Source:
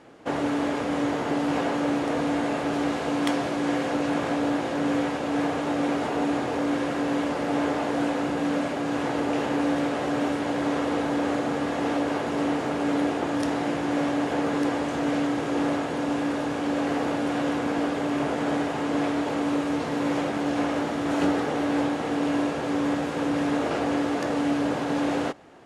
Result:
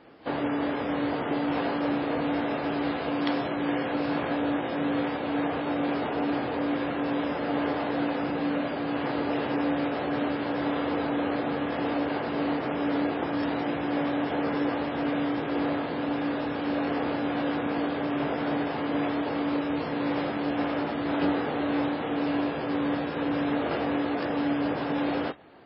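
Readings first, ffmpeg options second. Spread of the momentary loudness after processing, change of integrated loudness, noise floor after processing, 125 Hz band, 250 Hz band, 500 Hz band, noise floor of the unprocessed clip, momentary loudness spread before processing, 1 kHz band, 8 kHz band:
2 LU, -2.5 dB, -32 dBFS, -2.5 dB, -2.5 dB, -2.5 dB, -29 dBFS, 2 LU, -2.5 dB, under -40 dB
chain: -af "volume=-2dB" -ar 12000 -c:a libmp3lame -b:a 16k

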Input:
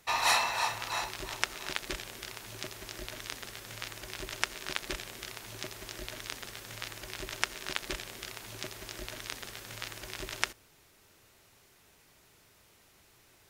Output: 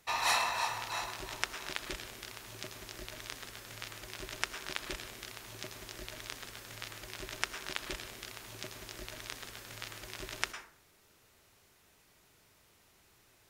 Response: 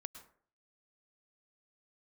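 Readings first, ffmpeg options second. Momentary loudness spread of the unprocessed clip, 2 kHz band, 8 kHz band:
10 LU, -3.0 dB, -3.5 dB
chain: -filter_complex "[1:a]atrim=start_sample=2205[a];[0:a][a]afir=irnorm=-1:irlink=0,volume=1dB"

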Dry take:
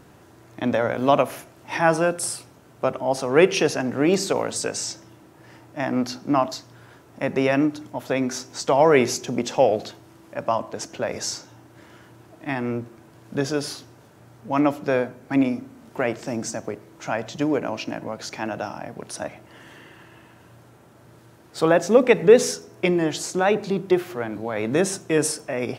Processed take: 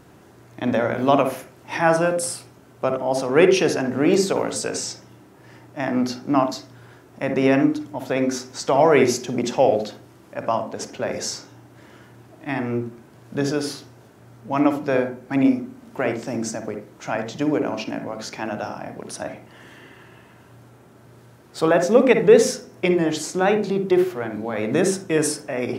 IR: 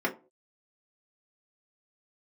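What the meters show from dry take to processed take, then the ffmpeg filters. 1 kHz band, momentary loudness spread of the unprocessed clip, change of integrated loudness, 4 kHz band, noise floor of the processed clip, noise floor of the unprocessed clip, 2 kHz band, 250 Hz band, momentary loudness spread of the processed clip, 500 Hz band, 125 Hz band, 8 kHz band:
+1.0 dB, 16 LU, +1.5 dB, 0.0 dB, -49 dBFS, -51 dBFS, +0.5 dB, +2.5 dB, 16 LU, +1.5 dB, +1.5 dB, 0.0 dB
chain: -filter_complex "[0:a]asplit=2[a][b];[b]bass=f=250:g=5,treble=f=4k:g=0[c];[1:a]atrim=start_sample=2205,adelay=54[d];[c][d]afir=irnorm=-1:irlink=0,volume=-17.5dB[e];[a][e]amix=inputs=2:normalize=0"

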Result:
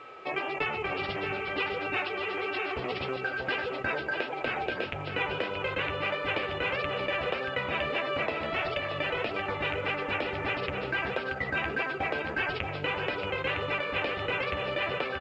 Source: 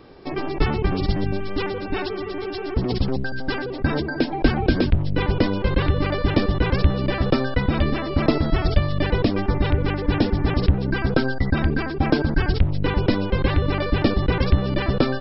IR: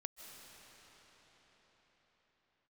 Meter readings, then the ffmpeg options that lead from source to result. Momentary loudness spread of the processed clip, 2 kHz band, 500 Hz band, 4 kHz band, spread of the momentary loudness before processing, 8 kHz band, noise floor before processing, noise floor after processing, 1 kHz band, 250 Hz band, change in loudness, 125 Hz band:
2 LU, -0.5 dB, -7.0 dB, -3.5 dB, 6 LU, n/a, -29 dBFS, -37 dBFS, -3.5 dB, -17.5 dB, -8.5 dB, -20.0 dB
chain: -filter_complex "[0:a]highpass=100,lowshelf=f=370:t=q:w=1.5:g=-10.5,acompressor=threshold=-28dB:ratio=6,aeval=exprs='val(0)+0.00447*sin(2*PI*1300*n/s)':c=same,lowpass=f=2.6k:t=q:w=3.9,flanger=delay=6.9:depth=6.6:regen=-42:speed=1.6:shape=sinusoidal,aecho=1:1:630:0.447,asplit=2[a][b];[1:a]atrim=start_sample=2205[c];[b][c]afir=irnorm=-1:irlink=0,volume=-9.5dB[d];[a][d]amix=inputs=2:normalize=0" -ar 16000 -c:a pcm_alaw

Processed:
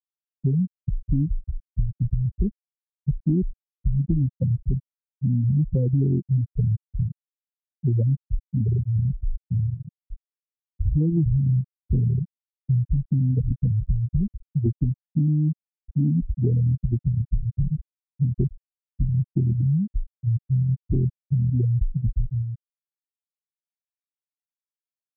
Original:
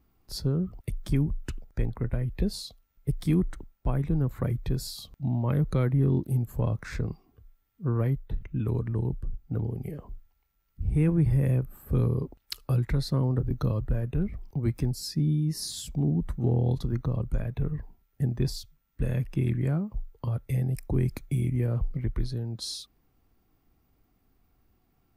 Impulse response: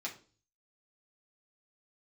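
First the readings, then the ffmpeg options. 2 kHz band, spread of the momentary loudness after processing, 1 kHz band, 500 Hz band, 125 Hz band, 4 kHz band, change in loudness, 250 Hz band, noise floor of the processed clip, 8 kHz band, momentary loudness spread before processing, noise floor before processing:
under -40 dB, 8 LU, under -25 dB, -3.5 dB, +5.0 dB, under -40 dB, +4.5 dB, +3.0 dB, under -85 dBFS, under -35 dB, 10 LU, -71 dBFS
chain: -af "afftfilt=real='re*gte(hypot(re,im),0.224)':imag='im*gte(hypot(re,im),0.224)':win_size=1024:overlap=0.75,acompressor=threshold=-26dB:ratio=6,volume=8.5dB"

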